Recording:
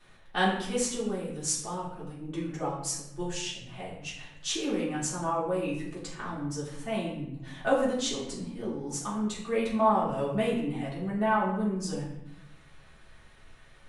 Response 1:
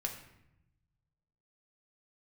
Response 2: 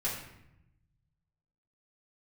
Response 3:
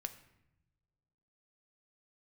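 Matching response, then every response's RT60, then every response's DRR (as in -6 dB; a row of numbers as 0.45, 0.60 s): 2; 0.80 s, 0.80 s, not exponential; 1.5, -8.5, 8.0 dB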